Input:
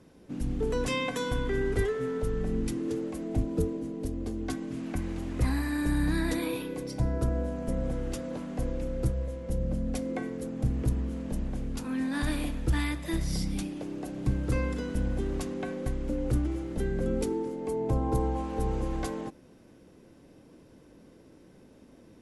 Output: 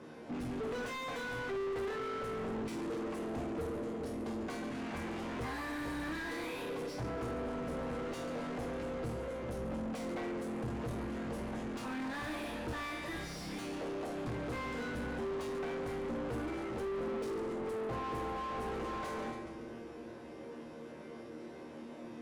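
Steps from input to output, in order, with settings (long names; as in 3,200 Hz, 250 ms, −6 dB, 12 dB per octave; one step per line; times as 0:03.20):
resonators tuned to a chord D#2 fifth, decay 0.37 s
echo with a time of its own for lows and highs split 390 Hz, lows 394 ms, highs 141 ms, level −15.5 dB
mid-hump overdrive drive 36 dB, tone 1,300 Hz, clips at −27.5 dBFS
level −2.5 dB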